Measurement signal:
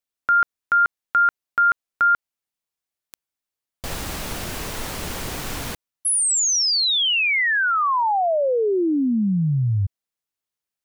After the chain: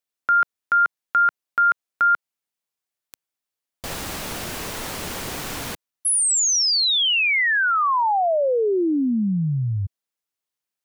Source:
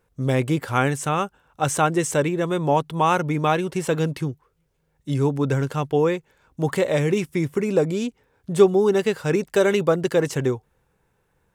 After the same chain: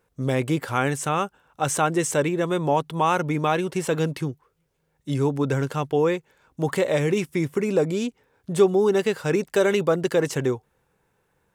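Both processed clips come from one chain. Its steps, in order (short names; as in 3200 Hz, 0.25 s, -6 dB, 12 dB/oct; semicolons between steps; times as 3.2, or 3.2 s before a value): low shelf 90 Hz -9 dB; in parallel at -2.5 dB: limiter -14.5 dBFS; on the sum: gain -4.5 dB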